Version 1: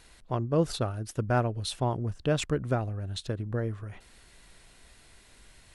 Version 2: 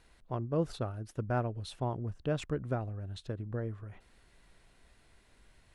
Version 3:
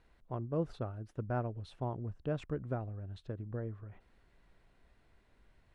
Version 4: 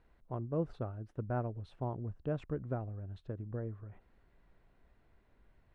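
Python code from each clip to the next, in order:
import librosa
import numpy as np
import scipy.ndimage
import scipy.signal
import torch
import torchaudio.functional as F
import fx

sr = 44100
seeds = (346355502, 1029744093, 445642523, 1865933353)

y1 = fx.high_shelf(x, sr, hz=3000.0, db=-9.0)
y1 = y1 * librosa.db_to_amplitude(-5.5)
y2 = fx.lowpass(y1, sr, hz=1800.0, slope=6)
y2 = y2 * librosa.db_to_amplitude(-3.0)
y3 = fx.high_shelf(y2, sr, hz=3000.0, db=-11.5)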